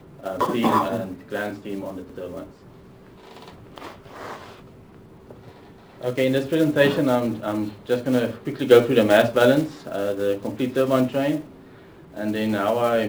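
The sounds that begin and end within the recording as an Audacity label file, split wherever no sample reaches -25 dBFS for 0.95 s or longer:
3.780000	4.340000	sound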